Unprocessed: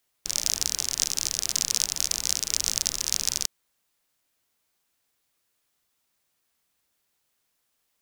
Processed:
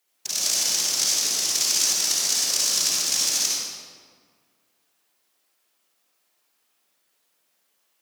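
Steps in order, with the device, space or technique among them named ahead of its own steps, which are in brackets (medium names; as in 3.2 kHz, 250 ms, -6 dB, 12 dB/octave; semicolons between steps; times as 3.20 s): whispering ghost (whisper effect; high-pass 280 Hz 12 dB/octave; reverberation RT60 1.8 s, pre-delay 50 ms, DRR -5.5 dB)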